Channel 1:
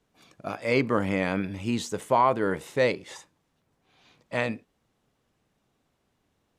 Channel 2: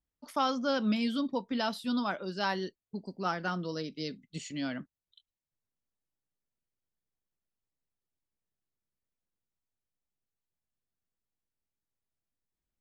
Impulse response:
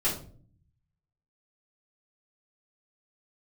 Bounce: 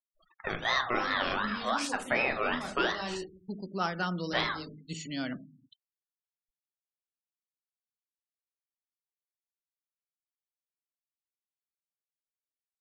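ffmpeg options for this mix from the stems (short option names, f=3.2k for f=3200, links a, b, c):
-filter_complex "[0:a]highpass=f=110:w=0.5412,highpass=f=110:w=1.3066,acompressor=threshold=-25dB:ratio=6,aeval=exprs='val(0)*sin(2*PI*1200*n/s+1200*0.3/2.7*sin(2*PI*2.7*n/s))':c=same,volume=-1dB,asplit=3[a][b][c];[b]volume=-12.5dB[d];[1:a]adelay=550,volume=-0.5dB,asplit=2[e][f];[f]volume=-19dB[g];[c]apad=whole_len=593441[h];[e][h]sidechaincompress=threshold=-53dB:ratio=8:attack=47:release=199[i];[2:a]atrim=start_sample=2205[j];[d][g]amix=inputs=2:normalize=0[k];[k][j]afir=irnorm=-1:irlink=0[l];[a][i][l]amix=inputs=3:normalize=0,afftfilt=real='re*gte(hypot(re,im),0.00398)':imag='im*gte(hypot(re,im),0.00398)':win_size=1024:overlap=0.75,adynamicequalizer=threshold=0.00562:dfrequency=3900:dqfactor=0.86:tfrequency=3900:tqfactor=0.86:attack=5:release=100:ratio=0.375:range=2.5:mode=boostabove:tftype=bell"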